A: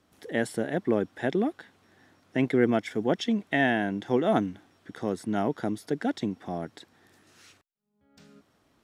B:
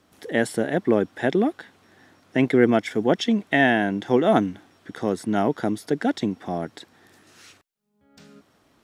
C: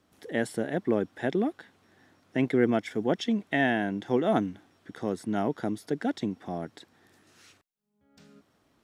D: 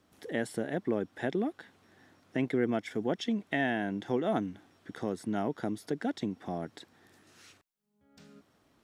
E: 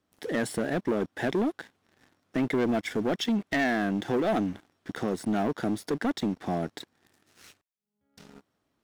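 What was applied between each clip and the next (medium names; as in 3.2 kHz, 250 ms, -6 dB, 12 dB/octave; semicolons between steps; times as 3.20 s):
bass shelf 130 Hz -3.5 dB; trim +6 dB
bass shelf 330 Hz +2.5 dB; trim -7.5 dB
compression 1.5:1, threshold -34 dBFS, peak gain reduction 6 dB
waveshaping leveller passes 3; trim -3 dB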